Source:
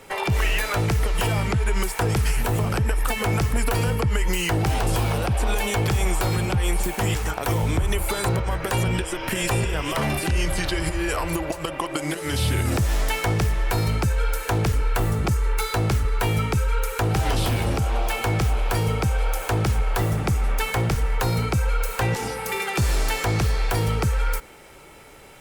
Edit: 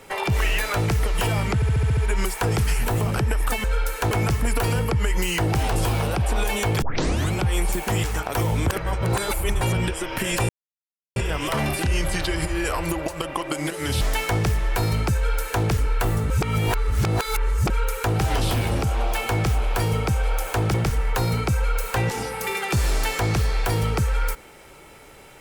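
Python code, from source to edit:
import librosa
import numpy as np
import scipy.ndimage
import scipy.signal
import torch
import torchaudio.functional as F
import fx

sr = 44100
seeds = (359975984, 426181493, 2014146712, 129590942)

y = fx.edit(x, sr, fx.stutter(start_s=1.55, slice_s=0.07, count=7),
    fx.tape_start(start_s=5.93, length_s=0.51),
    fx.reverse_span(start_s=7.81, length_s=0.91),
    fx.insert_silence(at_s=9.6, length_s=0.67),
    fx.cut(start_s=12.45, length_s=0.51),
    fx.duplicate(start_s=14.11, length_s=0.47, to_s=3.22),
    fx.reverse_span(start_s=15.25, length_s=1.4),
    fx.cut(start_s=19.69, length_s=1.1), tone=tone)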